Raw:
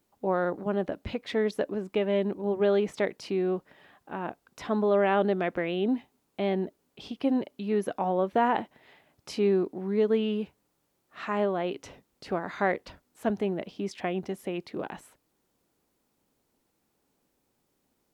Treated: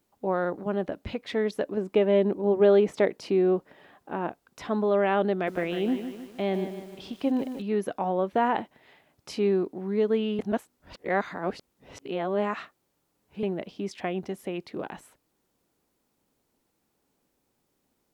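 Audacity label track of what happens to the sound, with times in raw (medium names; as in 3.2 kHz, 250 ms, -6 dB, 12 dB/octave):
1.770000	4.280000	peaking EQ 420 Hz +5.5 dB 2.5 oct
5.320000	7.620000	bit-crushed delay 153 ms, feedback 55%, word length 8-bit, level -9 dB
10.390000	13.430000	reverse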